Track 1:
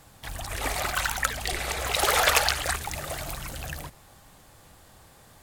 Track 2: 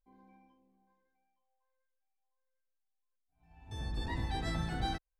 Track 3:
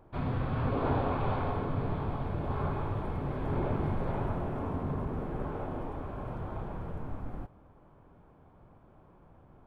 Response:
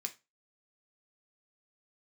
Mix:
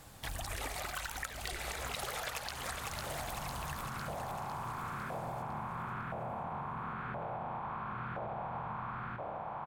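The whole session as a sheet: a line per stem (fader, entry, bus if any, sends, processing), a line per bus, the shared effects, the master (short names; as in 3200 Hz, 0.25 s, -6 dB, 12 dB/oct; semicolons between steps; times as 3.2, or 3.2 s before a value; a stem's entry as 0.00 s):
-1.0 dB, 0.00 s, no bus, no send, echo send -11 dB, dry
off
-3.0 dB, 1.70 s, bus A, send -12 dB, no echo send, per-bin compression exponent 0.4; tone controls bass +9 dB, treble -12 dB
bus A: 0.0 dB, LFO high-pass saw up 0.98 Hz 590–1500 Hz; limiter -29 dBFS, peak gain reduction 10 dB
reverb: on, RT60 0.25 s, pre-delay 3 ms
echo: feedback echo 0.503 s, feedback 50%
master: compressor 16:1, threshold -36 dBFS, peak gain reduction 20.5 dB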